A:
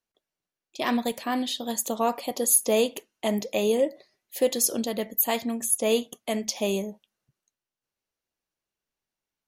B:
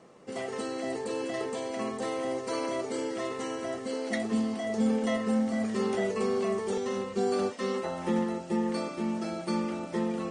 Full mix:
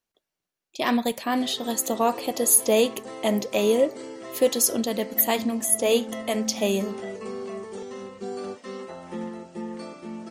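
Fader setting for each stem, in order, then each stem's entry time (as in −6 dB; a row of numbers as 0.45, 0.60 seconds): +2.5, −5.5 decibels; 0.00, 1.05 seconds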